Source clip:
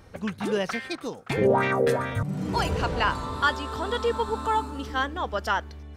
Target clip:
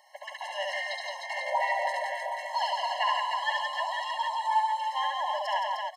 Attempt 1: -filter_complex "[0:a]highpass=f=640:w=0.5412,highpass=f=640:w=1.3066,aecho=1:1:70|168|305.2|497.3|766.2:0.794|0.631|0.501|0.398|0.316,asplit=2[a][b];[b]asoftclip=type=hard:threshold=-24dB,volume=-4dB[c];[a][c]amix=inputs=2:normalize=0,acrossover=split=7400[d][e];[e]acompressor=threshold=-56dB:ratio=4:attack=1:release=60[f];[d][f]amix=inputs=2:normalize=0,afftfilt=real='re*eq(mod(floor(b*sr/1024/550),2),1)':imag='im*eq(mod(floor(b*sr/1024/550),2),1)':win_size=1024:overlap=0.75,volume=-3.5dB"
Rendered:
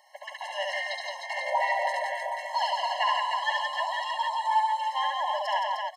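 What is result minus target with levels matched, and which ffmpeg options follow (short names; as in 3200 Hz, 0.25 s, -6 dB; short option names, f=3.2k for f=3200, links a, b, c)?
hard clip: distortion -5 dB
-filter_complex "[0:a]highpass=f=640:w=0.5412,highpass=f=640:w=1.3066,aecho=1:1:70|168|305.2|497.3|766.2:0.794|0.631|0.501|0.398|0.316,asplit=2[a][b];[b]asoftclip=type=hard:threshold=-32dB,volume=-4dB[c];[a][c]amix=inputs=2:normalize=0,acrossover=split=7400[d][e];[e]acompressor=threshold=-56dB:ratio=4:attack=1:release=60[f];[d][f]amix=inputs=2:normalize=0,afftfilt=real='re*eq(mod(floor(b*sr/1024/550),2),1)':imag='im*eq(mod(floor(b*sr/1024/550),2),1)':win_size=1024:overlap=0.75,volume=-3.5dB"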